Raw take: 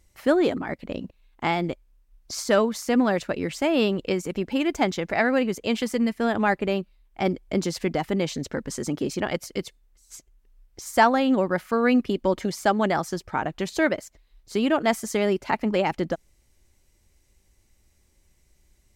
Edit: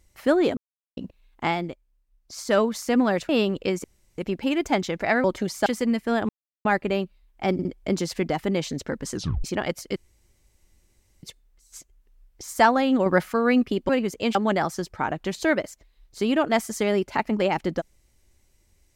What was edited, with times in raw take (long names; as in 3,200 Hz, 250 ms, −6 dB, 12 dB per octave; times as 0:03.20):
0:00.57–0:00.97: silence
0:01.48–0:02.59: duck −8.5 dB, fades 0.28 s
0:03.29–0:03.72: remove
0:04.27: splice in room tone 0.34 s
0:05.33–0:05.79: swap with 0:12.27–0:12.69
0:06.42: splice in silence 0.36 s
0:07.30: stutter 0.06 s, 3 plays
0:08.78: tape stop 0.31 s
0:09.61: splice in room tone 1.27 s
0:11.44–0:11.70: clip gain +5 dB